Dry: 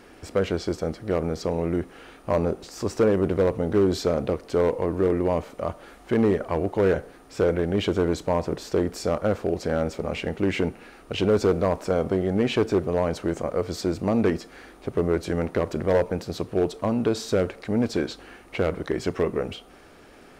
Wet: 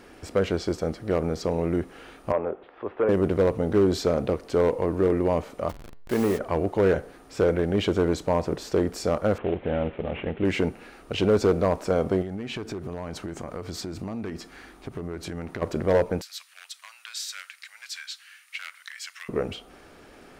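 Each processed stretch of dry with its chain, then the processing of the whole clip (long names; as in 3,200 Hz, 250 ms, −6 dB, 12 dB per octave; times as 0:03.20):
0:02.32–0:03.09: Chebyshev low-pass filter 3,400 Hz, order 5 + three-way crossover with the lows and the highs turned down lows −16 dB, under 370 Hz, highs −13 dB, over 2,200 Hz
0:05.69–0:06.39: hold until the input has moved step −32 dBFS + low-shelf EQ 380 Hz −4.5 dB + hum removal 140.7 Hz, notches 34
0:09.38–0:10.45: variable-slope delta modulation 16 kbit/s + dynamic equaliser 1,300 Hz, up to −3 dB, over −41 dBFS, Q 1.1
0:12.22–0:15.62: parametric band 520 Hz −7 dB 0.64 octaves + downward compressor 12 to 1, threshold −29 dBFS
0:16.21–0:19.29: inverse Chebyshev high-pass filter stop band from 370 Hz, stop band 70 dB + high-shelf EQ 6,500 Hz +5.5 dB
whole clip: no processing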